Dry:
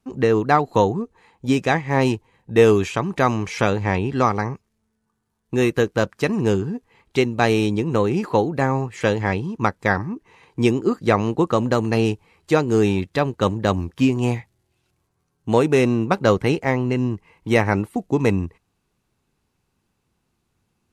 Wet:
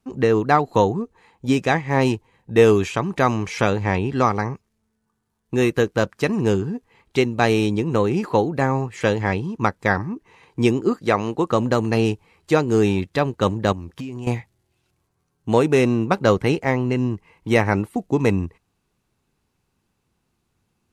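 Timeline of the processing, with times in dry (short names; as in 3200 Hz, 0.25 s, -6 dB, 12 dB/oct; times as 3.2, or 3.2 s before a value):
10.96–11.49 low shelf 250 Hz -7 dB
13.72–14.27 compressor 16:1, threshold -27 dBFS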